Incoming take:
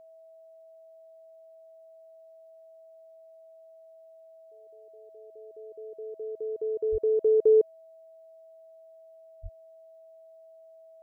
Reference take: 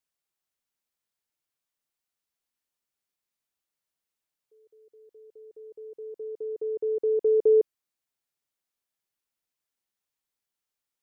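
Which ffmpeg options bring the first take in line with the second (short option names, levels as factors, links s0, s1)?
-filter_complex "[0:a]bandreject=f=650:w=30,asplit=3[s0][s1][s2];[s0]afade=t=out:st=6.91:d=0.02[s3];[s1]highpass=f=140:w=0.5412,highpass=f=140:w=1.3066,afade=t=in:st=6.91:d=0.02,afade=t=out:st=7.03:d=0.02[s4];[s2]afade=t=in:st=7.03:d=0.02[s5];[s3][s4][s5]amix=inputs=3:normalize=0,asplit=3[s6][s7][s8];[s6]afade=t=out:st=9.42:d=0.02[s9];[s7]highpass=f=140:w=0.5412,highpass=f=140:w=1.3066,afade=t=in:st=9.42:d=0.02,afade=t=out:st=9.54:d=0.02[s10];[s8]afade=t=in:st=9.54:d=0.02[s11];[s9][s10][s11]amix=inputs=3:normalize=0"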